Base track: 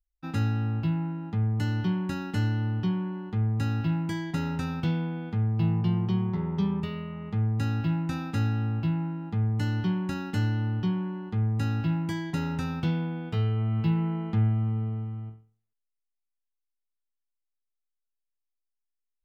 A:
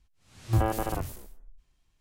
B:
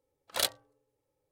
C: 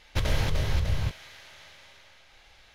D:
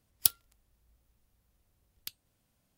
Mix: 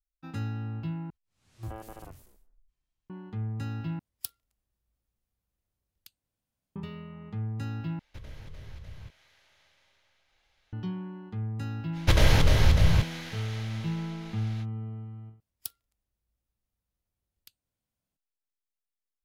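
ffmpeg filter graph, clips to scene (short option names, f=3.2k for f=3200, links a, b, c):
-filter_complex "[4:a]asplit=2[a][b];[3:a]asplit=2[c][d];[0:a]volume=-7dB[e];[c]acrossover=split=450|1200|2500[f][g][h][i];[f]acompressor=threshold=-25dB:ratio=3[j];[g]acompressor=threshold=-51dB:ratio=3[k];[h]acompressor=threshold=-46dB:ratio=3[l];[i]acompressor=threshold=-49dB:ratio=3[m];[j][k][l][m]amix=inputs=4:normalize=0[n];[d]acontrast=83[o];[e]asplit=5[p][q][r][s][t];[p]atrim=end=1.104[u];[1:a]atrim=end=2,asetpts=PTS-STARTPTS,volume=-15dB[v];[q]atrim=start=3.096:end=3.994[w];[a]atrim=end=2.77,asetpts=PTS-STARTPTS,volume=-12dB[x];[r]atrim=start=6.756:end=7.994[y];[n]atrim=end=2.74,asetpts=PTS-STARTPTS,volume=-15dB[z];[s]atrim=start=10.726:end=15.404[aa];[b]atrim=end=2.77,asetpts=PTS-STARTPTS,volume=-13.5dB[ab];[t]atrim=start=18.166[ac];[o]atrim=end=2.74,asetpts=PTS-STARTPTS,volume=-1dB,afade=t=in:d=0.05,afade=t=out:st=2.69:d=0.05,adelay=11920[ad];[u][v]acrossfade=d=0.004:c1=hsin:c2=hsin[ae];[ae][w]acrossfade=d=0.004:c1=hsin:c2=hsin[af];[af][x]acrossfade=d=0.004:c1=hsin:c2=hsin[ag];[ag][y]acrossfade=d=0.004:c1=hsin:c2=hsin[ah];[ah][z]acrossfade=d=0.004:c1=hsin:c2=hsin[ai];[ai][aa]acrossfade=d=0.004:c1=hsin:c2=hsin[aj];[aj][ab]acrossfade=d=0.004:c1=hsin:c2=hsin[ak];[ak][ac]acrossfade=d=0.004:c1=hsin:c2=hsin[al];[al][ad]amix=inputs=2:normalize=0"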